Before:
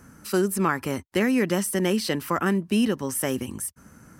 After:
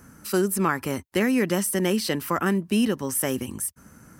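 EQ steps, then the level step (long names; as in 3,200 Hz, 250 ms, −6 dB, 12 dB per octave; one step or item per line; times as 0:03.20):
high-shelf EQ 11,000 Hz +6 dB
0.0 dB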